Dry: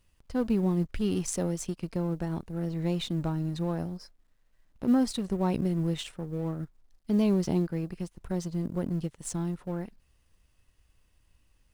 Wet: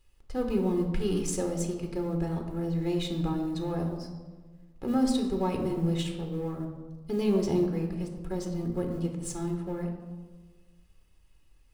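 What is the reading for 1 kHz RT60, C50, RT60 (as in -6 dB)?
1.3 s, 6.5 dB, 1.5 s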